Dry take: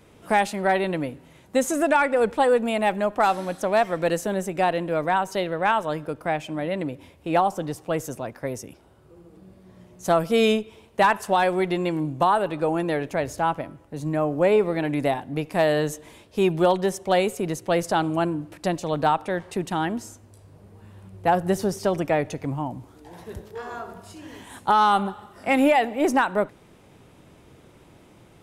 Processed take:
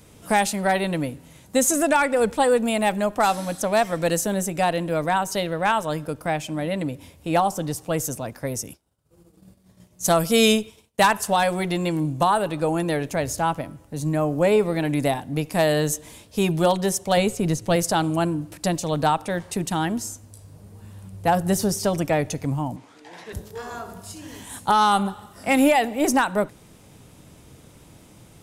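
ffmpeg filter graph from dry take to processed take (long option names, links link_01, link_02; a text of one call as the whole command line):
ffmpeg -i in.wav -filter_complex "[0:a]asettb=1/sr,asplit=3[link_01][link_02][link_03];[link_01]atrim=end=8.644[link_04];[link_02]atrim=start=8.64:end=11.08,asetpts=PTS-STARTPTS,afade=type=in:duration=0.004:curve=qsin,afade=type=out:start_time=2.436:duration=0.004:curve=qsin,agate=range=-33dB:threshold=-43dB:ratio=3:release=100:detection=peak,highshelf=frequency=2300:gain=4.5[link_05];[link_03]atrim=start=11.076[link_06];[link_04][link_05]acrossfade=duration=0.004:curve1=hsin:curve2=qsin[link_07];[link_07][link_06]acrossfade=duration=0.004:curve1=qsin:curve2=hsin,asettb=1/sr,asplit=3[link_08][link_09][link_10];[link_08]atrim=end=17.174[link_11];[link_09]atrim=start=17.17:end=17.76,asetpts=PTS-STARTPTS,afade=type=in:duration=0.004:curve=qsin,afade=type=out:start_time=0.586:duration=0.004:curve=qsin,acrossover=split=6100[link_12][link_13];[link_13]acompressor=threshold=-49dB:ratio=4:attack=1:release=60[link_14];[link_12][link_14]amix=inputs=2:normalize=0,lowshelf=frequency=150:gain=9[link_15];[link_10]atrim=start=17.756[link_16];[link_11][link_15]acrossfade=duration=0.004:curve1=hsin:curve2=qsin[link_17];[link_17][link_16]acrossfade=duration=0.004:curve1=qsin:curve2=hsin,asettb=1/sr,asplit=3[link_18][link_19][link_20];[link_18]atrim=end=22.764[link_21];[link_19]atrim=start=22.76:end=23.33,asetpts=PTS-STARTPTS,afade=type=in:duration=0.004:curve=qsin,afade=type=out:start_time=0.566:duration=0.004:curve=qsin,highpass=290,lowpass=5700,equalizer=frequency=2100:width_type=o:width=1.3:gain=9.5[link_22];[link_20]atrim=start=23.326[link_23];[link_21][link_22]acrossfade=duration=0.004:curve1=hsin:curve2=qsin[link_24];[link_24][link_23]acrossfade=duration=0.004:curve1=qsin:curve2=hsin,bass=frequency=250:gain=5,treble=frequency=4000:gain=11,bandreject=frequency=370:width=12" out.wav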